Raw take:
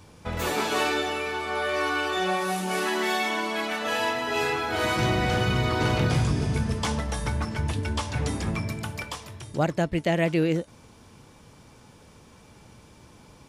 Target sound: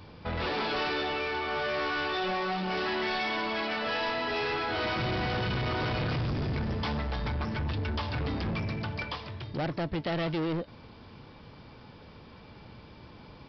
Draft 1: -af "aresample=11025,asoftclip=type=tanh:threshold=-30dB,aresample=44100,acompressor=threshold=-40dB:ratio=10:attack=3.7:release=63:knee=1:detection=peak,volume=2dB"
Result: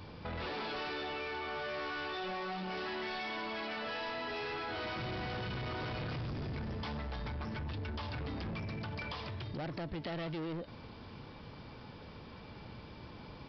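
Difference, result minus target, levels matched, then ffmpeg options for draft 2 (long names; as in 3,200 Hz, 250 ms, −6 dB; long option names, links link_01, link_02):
downward compressor: peak gain reduction +9.5 dB
-af "aresample=11025,asoftclip=type=tanh:threshold=-30dB,aresample=44100,volume=2dB"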